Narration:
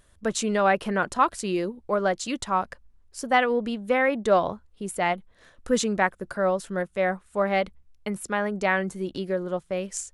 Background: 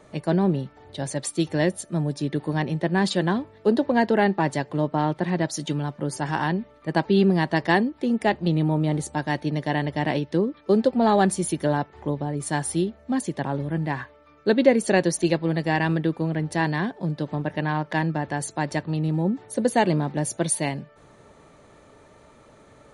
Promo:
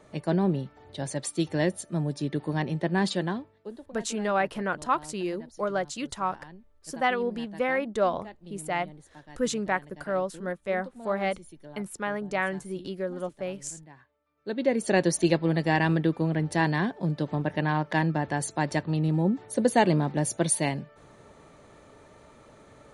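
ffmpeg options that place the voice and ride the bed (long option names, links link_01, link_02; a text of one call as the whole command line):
ffmpeg -i stem1.wav -i stem2.wav -filter_complex "[0:a]adelay=3700,volume=-4.5dB[link_01];[1:a]volume=19dB,afade=type=out:start_time=3.04:duration=0.69:silence=0.1,afade=type=in:start_time=14.35:duration=0.79:silence=0.0749894[link_02];[link_01][link_02]amix=inputs=2:normalize=0" out.wav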